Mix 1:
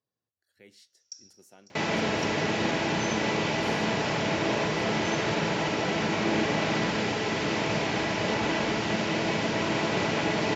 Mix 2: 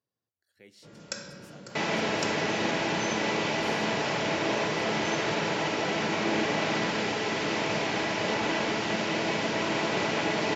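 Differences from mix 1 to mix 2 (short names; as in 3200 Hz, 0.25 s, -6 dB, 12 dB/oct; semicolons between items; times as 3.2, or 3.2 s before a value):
first sound: remove band-pass 5700 Hz, Q 16; second sound: add low shelf 140 Hz -10 dB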